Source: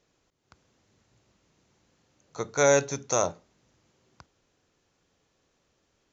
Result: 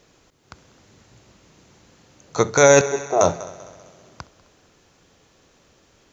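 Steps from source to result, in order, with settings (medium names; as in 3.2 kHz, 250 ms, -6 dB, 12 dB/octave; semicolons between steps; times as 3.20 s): 2.81–3.21 s: two resonant band-passes 530 Hz, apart 0.71 oct; multi-head delay 65 ms, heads first and third, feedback 60%, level -23 dB; loudness maximiser +15.5 dB; trim -1 dB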